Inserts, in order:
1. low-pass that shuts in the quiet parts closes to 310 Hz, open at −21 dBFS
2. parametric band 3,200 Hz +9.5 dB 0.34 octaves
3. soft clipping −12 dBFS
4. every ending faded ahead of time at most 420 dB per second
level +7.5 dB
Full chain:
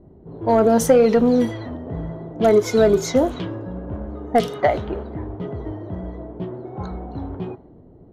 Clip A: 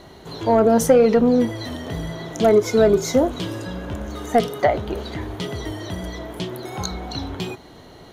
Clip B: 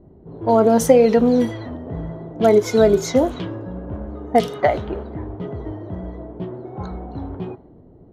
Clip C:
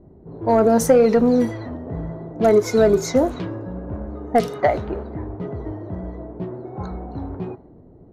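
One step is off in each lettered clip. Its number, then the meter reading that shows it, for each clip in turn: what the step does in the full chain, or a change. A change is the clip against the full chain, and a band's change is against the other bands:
1, 4 kHz band +4.5 dB
3, distortion level −21 dB
2, 4 kHz band −2.5 dB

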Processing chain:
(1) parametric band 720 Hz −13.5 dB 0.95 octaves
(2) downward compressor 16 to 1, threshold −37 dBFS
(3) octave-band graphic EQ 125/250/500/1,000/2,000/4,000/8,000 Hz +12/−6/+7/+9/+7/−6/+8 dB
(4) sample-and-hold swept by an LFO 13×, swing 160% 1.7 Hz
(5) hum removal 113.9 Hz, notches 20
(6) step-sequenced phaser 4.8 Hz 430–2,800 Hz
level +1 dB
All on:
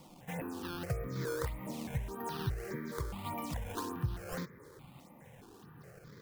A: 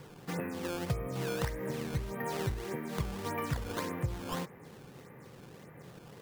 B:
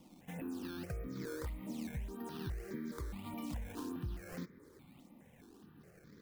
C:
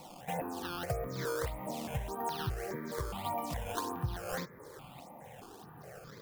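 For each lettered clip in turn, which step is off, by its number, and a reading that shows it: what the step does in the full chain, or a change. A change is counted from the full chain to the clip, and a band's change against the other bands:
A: 6, change in momentary loudness spread −1 LU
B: 3, change in crest factor −4.5 dB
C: 1, 125 Hz band −4.5 dB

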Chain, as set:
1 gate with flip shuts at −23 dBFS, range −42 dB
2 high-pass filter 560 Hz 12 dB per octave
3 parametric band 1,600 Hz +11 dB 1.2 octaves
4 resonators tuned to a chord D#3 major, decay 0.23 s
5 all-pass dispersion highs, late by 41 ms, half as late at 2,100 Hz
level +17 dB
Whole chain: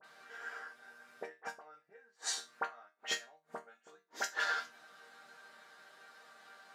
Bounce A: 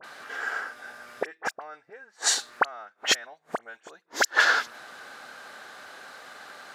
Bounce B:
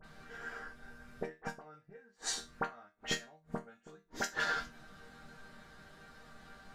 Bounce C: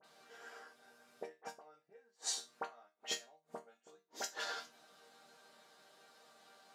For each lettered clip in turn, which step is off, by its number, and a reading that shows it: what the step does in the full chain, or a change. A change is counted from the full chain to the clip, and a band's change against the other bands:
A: 4, 250 Hz band +1.5 dB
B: 2, 250 Hz band +14.0 dB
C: 3, 2 kHz band −9.0 dB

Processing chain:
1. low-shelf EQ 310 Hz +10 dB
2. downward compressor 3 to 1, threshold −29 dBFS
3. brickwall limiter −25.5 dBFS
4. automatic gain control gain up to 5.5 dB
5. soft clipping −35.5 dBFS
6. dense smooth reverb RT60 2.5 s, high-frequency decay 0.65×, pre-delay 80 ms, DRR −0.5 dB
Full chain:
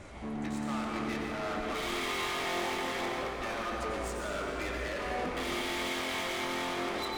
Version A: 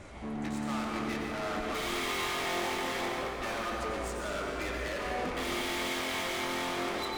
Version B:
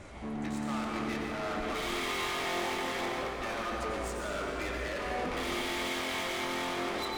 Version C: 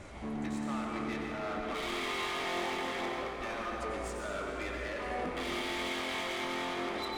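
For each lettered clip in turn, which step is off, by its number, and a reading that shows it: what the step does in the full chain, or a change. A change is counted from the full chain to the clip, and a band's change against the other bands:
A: 3, average gain reduction 2.5 dB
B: 2, average gain reduction 4.5 dB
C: 4, change in integrated loudness −1.5 LU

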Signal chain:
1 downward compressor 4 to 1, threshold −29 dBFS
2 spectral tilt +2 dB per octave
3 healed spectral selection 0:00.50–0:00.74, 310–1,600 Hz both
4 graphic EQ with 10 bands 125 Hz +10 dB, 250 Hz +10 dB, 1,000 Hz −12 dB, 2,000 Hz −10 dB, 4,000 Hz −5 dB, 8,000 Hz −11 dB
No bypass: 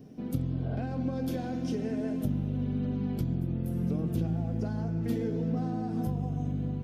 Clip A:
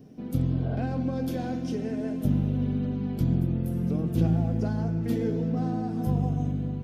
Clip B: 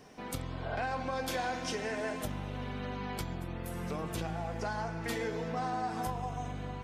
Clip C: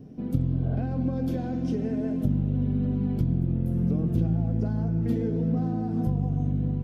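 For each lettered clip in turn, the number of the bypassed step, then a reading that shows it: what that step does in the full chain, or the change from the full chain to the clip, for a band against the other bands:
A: 1, change in crest factor +2.0 dB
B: 4, 2 kHz band +17.0 dB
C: 2, 1 kHz band −3.5 dB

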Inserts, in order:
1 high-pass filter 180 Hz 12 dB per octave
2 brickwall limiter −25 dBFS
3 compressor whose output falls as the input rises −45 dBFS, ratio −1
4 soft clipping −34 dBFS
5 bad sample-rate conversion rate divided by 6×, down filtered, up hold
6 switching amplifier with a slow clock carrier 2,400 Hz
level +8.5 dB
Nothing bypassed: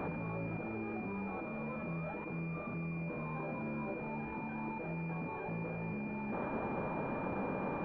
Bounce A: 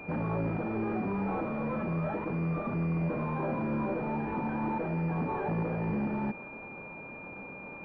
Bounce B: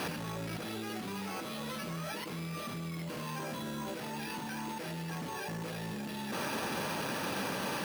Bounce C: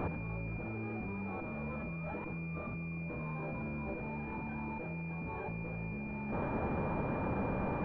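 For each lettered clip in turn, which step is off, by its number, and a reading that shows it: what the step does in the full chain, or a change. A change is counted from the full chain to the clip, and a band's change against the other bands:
3, change in crest factor −4.5 dB
6, 2 kHz band +4.0 dB
1, 125 Hz band +2.5 dB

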